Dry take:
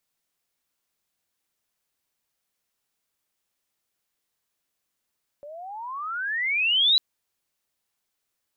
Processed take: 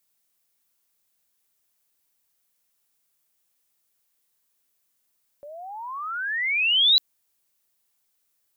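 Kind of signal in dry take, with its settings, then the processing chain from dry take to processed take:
gliding synth tone sine, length 1.55 s, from 564 Hz, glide +34 st, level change +23 dB, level -15 dB
treble shelf 7.4 kHz +10.5 dB

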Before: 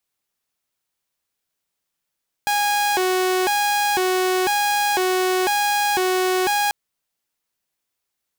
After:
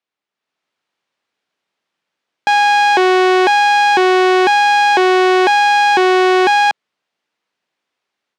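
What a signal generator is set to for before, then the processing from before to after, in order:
siren hi-lo 370–823 Hz 1 per s saw -15 dBFS 4.24 s
level rider gain up to 9.5 dB; band-pass 200–3400 Hz

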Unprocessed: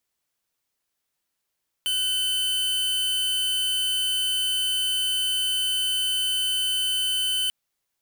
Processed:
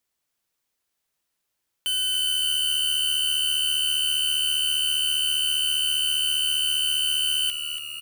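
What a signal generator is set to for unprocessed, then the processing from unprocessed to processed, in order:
tone square 3.04 kHz -24.5 dBFS 5.64 s
frequency-shifting echo 282 ms, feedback 60%, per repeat -75 Hz, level -8 dB

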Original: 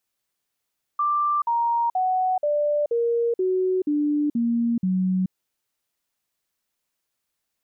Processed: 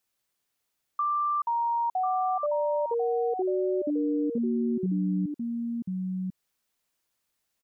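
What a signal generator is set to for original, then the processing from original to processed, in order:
stepped sine 1.18 kHz down, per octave 3, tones 9, 0.43 s, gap 0.05 s -19 dBFS
delay 1043 ms -6.5 dB; compression 1.5:1, threshold -34 dBFS

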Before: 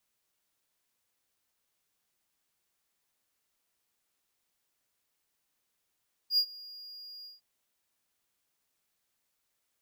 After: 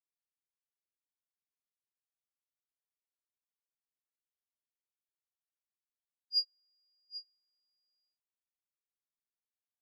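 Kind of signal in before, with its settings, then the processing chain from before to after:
ADSR triangle 4.84 kHz, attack 79 ms, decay 72 ms, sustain -23 dB, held 0.95 s, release 155 ms -19 dBFS
low-pass 6.2 kHz 12 dB/octave; delay 788 ms -6.5 dB; upward expansion 2.5:1, over -45 dBFS

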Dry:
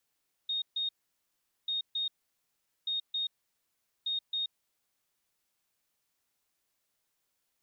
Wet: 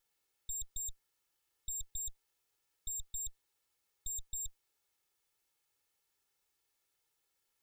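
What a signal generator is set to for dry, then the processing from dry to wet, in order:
beep pattern sine 3.71 kHz, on 0.13 s, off 0.14 s, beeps 2, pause 0.79 s, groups 4, -29.5 dBFS
comb filter that takes the minimum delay 2.3 ms

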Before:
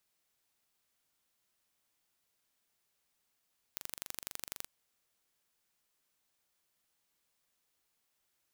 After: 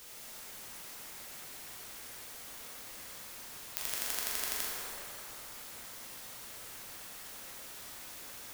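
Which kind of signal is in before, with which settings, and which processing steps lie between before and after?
pulse train 24 per s, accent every 2, -11 dBFS 0.88 s
peaking EQ 120 Hz -14.5 dB 2.1 oct; in parallel at -5 dB: word length cut 8-bit, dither triangular; on the sum: plate-style reverb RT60 3.7 s, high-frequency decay 0.5×, DRR -6.5 dB

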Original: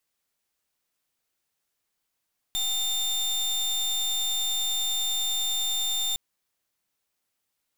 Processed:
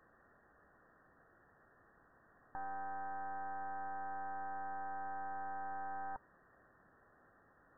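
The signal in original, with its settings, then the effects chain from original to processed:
pulse 3.61 kHz, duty 29% -27 dBFS 3.61 s
band-stop 910 Hz, Q 10; sine folder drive 19 dB, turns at -26 dBFS; brick-wall FIR low-pass 1.9 kHz

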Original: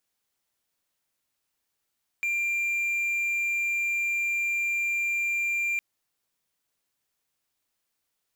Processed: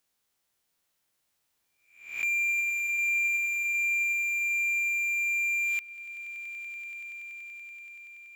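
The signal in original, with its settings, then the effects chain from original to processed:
tone triangle 2.38 kHz -22.5 dBFS 3.56 s
reverse spectral sustain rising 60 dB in 0.56 s; echo with a slow build-up 95 ms, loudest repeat 8, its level -14.5 dB

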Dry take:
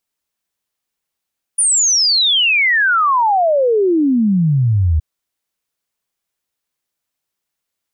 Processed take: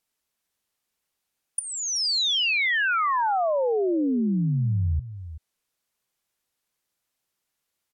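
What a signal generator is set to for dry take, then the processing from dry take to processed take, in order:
log sweep 9.7 kHz -> 74 Hz 3.42 s -10.5 dBFS
low-pass that closes with the level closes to 2.9 kHz, closed at -16.5 dBFS; compression 12:1, threshold -22 dBFS; delay 380 ms -13.5 dB

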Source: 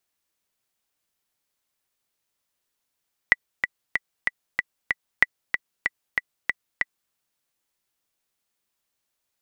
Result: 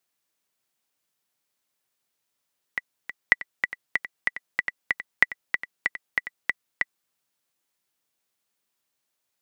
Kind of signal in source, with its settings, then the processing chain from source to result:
metronome 189 bpm, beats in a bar 6, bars 2, 1.97 kHz, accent 7 dB -1.5 dBFS
high-pass 100 Hz 12 dB/octave; reverse echo 543 ms -11.5 dB

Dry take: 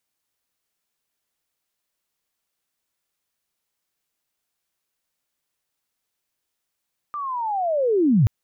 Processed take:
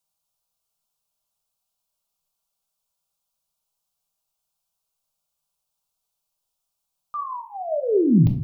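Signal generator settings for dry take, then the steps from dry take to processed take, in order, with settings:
sweep linear 1.2 kHz -> 94 Hz -26.5 dBFS -> -12 dBFS 1.13 s
band-stop 550 Hz, Q 12; touch-sensitive phaser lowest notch 320 Hz, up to 1.5 kHz, full sweep at -19.5 dBFS; simulated room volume 580 m³, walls furnished, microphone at 1.2 m

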